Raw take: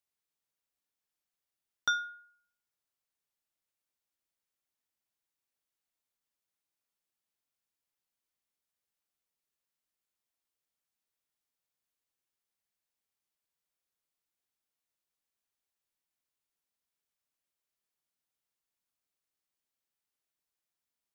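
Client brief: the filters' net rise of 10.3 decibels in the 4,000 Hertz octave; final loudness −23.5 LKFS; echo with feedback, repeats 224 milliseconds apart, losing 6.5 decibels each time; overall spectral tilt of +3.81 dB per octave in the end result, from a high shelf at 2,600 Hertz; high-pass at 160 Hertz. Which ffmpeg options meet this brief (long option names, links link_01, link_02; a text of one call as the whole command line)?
ffmpeg -i in.wav -af "highpass=160,highshelf=frequency=2600:gain=3.5,equalizer=frequency=4000:width_type=o:gain=9,aecho=1:1:224|448|672|896|1120|1344:0.473|0.222|0.105|0.0491|0.0231|0.0109,volume=6dB" out.wav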